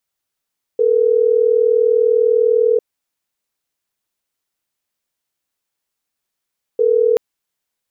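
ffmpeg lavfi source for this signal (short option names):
-f lavfi -i "aevalsrc='0.211*(sin(2*PI*440*t)+sin(2*PI*480*t))*clip(min(mod(t,6),2-mod(t,6))/0.005,0,1)':d=6.38:s=44100"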